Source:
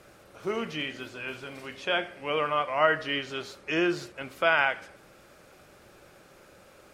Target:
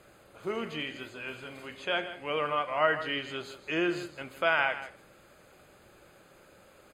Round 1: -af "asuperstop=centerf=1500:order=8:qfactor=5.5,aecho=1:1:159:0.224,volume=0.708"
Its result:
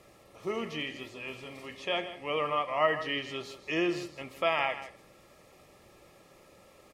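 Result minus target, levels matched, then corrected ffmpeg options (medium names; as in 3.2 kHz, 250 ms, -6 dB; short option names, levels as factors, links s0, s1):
2 kHz band -3.0 dB
-af "asuperstop=centerf=5600:order=8:qfactor=5.5,aecho=1:1:159:0.224,volume=0.708"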